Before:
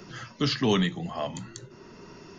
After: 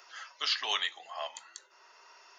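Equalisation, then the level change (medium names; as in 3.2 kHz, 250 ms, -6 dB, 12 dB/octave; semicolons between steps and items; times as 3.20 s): high-pass 710 Hz 24 dB/octave; dynamic bell 3.2 kHz, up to +5 dB, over -43 dBFS, Q 0.96; -3.5 dB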